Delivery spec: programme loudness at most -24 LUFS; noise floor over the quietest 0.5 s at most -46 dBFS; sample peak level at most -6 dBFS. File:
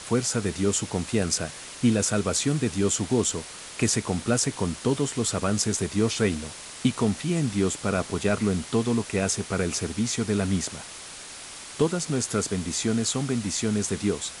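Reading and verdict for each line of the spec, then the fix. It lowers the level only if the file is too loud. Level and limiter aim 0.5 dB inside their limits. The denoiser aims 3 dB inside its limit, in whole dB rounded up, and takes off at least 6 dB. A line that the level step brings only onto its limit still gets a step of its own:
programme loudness -26.0 LUFS: OK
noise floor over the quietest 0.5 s -41 dBFS: fail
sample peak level -9.5 dBFS: OK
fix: denoiser 8 dB, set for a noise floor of -41 dBFS

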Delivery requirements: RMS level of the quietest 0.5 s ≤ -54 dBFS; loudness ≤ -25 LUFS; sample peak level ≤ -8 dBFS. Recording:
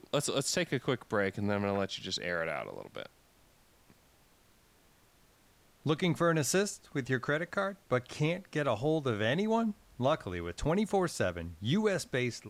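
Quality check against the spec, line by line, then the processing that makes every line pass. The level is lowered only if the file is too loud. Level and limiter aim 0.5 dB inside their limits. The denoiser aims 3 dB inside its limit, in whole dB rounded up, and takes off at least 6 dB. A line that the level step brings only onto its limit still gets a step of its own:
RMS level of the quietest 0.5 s -65 dBFS: OK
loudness -32.5 LUFS: OK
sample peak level -16.5 dBFS: OK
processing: none

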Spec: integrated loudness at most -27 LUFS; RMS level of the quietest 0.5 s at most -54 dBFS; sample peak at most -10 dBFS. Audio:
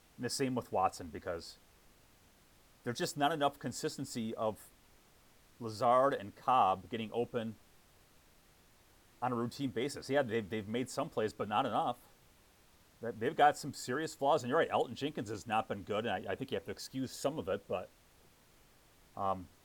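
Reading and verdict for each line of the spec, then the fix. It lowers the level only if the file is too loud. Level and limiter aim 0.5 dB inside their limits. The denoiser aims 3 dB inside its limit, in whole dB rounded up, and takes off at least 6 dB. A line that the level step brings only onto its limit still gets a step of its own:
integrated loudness -35.5 LUFS: OK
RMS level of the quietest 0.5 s -65 dBFS: OK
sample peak -15.0 dBFS: OK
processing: none

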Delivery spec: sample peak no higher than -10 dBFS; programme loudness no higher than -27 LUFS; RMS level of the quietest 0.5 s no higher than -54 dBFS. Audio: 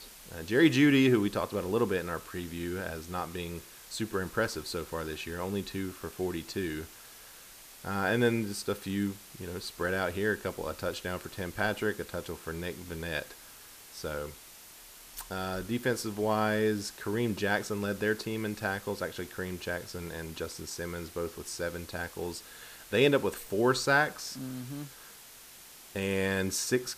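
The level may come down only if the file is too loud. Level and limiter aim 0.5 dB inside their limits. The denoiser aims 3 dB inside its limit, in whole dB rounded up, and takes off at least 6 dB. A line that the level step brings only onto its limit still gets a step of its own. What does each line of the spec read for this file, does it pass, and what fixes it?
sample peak -11.5 dBFS: OK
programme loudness -32.0 LUFS: OK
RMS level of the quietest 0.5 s -51 dBFS: fail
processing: denoiser 6 dB, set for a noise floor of -51 dBFS

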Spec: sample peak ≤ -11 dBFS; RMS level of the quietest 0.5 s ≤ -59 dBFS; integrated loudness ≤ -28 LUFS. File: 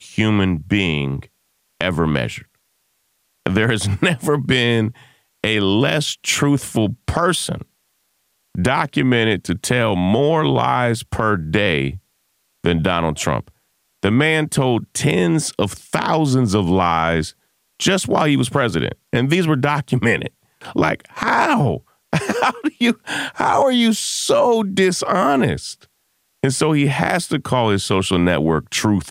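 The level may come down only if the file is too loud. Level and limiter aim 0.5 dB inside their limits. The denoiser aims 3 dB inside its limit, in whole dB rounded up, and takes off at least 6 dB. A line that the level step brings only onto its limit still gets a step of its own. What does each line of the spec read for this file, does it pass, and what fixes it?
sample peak -3.0 dBFS: fail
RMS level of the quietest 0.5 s -66 dBFS: OK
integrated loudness -18.0 LUFS: fail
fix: gain -10.5 dB

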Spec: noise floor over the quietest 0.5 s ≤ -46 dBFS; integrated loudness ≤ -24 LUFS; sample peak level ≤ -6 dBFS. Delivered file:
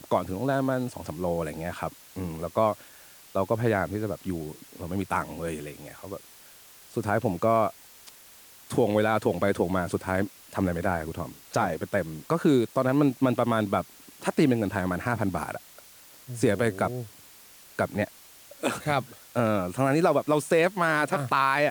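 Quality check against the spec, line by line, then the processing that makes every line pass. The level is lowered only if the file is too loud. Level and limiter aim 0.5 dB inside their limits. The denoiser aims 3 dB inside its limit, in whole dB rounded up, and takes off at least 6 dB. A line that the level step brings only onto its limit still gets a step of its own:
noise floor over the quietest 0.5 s -51 dBFS: OK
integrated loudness -27.0 LUFS: OK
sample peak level -11.0 dBFS: OK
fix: none

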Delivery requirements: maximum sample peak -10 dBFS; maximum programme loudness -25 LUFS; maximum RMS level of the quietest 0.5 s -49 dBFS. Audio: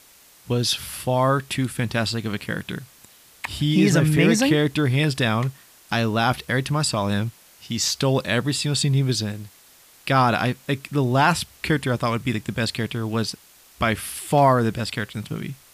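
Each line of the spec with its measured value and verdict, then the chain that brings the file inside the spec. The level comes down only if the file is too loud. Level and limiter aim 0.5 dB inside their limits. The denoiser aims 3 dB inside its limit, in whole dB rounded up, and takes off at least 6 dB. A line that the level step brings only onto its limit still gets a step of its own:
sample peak -4.5 dBFS: fail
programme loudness -22.5 LUFS: fail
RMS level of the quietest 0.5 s -52 dBFS: OK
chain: gain -3 dB; limiter -10.5 dBFS

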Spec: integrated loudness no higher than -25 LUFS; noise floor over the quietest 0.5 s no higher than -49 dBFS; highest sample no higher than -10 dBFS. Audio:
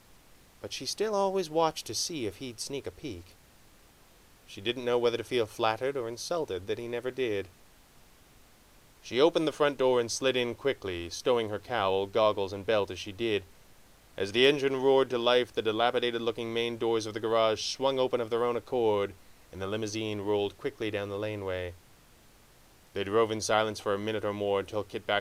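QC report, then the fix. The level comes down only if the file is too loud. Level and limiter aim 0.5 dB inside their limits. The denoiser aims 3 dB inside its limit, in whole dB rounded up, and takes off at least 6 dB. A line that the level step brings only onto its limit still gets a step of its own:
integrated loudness -30.0 LUFS: OK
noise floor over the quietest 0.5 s -58 dBFS: OK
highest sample -9.5 dBFS: fail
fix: limiter -10.5 dBFS

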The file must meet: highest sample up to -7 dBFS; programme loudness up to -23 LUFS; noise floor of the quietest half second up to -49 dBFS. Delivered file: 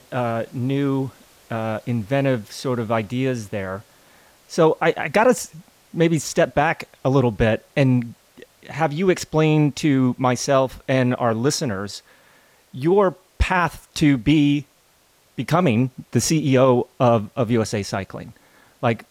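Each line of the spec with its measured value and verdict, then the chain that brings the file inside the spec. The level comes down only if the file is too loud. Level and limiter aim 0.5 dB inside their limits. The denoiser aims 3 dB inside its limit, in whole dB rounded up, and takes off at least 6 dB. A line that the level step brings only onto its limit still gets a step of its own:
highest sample -5.5 dBFS: fail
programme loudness -20.5 LUFS: fail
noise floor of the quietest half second -58 dBFS: OK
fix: gain -3 dB

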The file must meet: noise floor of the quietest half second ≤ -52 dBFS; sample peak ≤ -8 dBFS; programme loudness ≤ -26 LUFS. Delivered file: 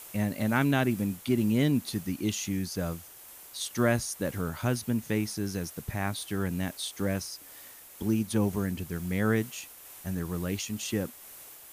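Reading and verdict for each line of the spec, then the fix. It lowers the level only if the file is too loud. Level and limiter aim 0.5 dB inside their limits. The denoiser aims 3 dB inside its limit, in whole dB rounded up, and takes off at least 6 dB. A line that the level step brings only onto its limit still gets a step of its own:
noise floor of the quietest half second -49 dBFS: fail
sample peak -12.5 dBFS: OK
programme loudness -30.5 LUFS: OK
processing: denoiser 6 dB, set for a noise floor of -49 dBFS

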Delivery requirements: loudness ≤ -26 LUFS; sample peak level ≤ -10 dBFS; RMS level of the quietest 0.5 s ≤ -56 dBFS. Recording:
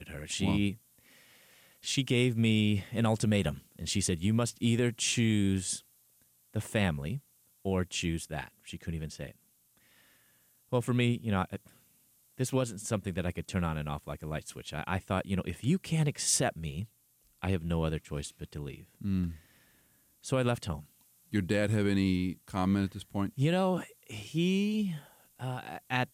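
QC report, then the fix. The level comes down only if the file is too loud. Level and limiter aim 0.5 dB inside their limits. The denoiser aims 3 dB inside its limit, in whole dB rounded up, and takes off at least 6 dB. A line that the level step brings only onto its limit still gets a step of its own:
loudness -32.0 LUFS: OK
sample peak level -13.5 dBFS: OK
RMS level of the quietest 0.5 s -68 dBFS: OK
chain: none

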